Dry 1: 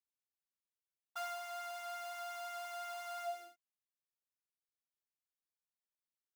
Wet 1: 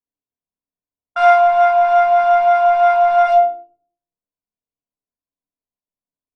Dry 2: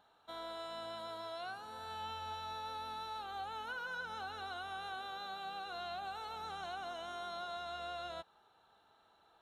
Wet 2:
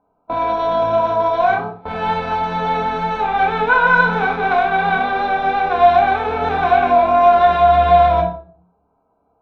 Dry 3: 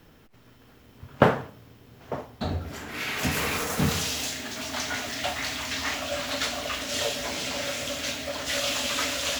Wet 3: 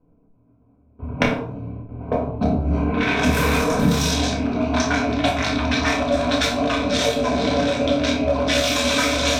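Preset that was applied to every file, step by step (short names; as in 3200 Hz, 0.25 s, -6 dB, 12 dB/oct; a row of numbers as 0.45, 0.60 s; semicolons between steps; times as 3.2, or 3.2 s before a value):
Wiener smoothing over 25 samples; gate with hold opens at -43 dBFS; added harmonics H 3 -27 dB, 7 -11 dB, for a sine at -1 dBFS; low-pass opened by the level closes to 1500 Hz, open at -26 dBFS; high shelf 12000 Hz -3.5 dB; compressor 5:1, threshold -33 dBFS; ripple EQ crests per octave 1.6, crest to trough 8 dB; flutter echo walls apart 4.9 m, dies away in 0.23 s; shoebox room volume 350 m³, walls furnished, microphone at 2 m; normalise peaks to -1.5 dBFS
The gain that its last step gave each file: +24.0, +26.0, +12.0 dB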